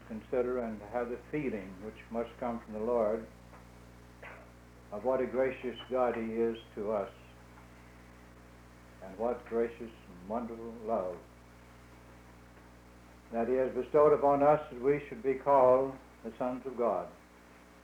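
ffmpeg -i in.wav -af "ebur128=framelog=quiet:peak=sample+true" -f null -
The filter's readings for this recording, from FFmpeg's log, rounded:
Integrated loudness:
  I:         -32.2 LUFS
  Threshold: -44.2 LUFS
Loudness range:
  LRA:        12.1 LU
  Threshold: -54.1 LUFS
  LRA low:   -40.7 LUFS
  LRA high:  -28.6 LUFS
Sample peak:
  Peak:      -14.1 dBFS
True peak:
  Peak:      -14.1 dBFS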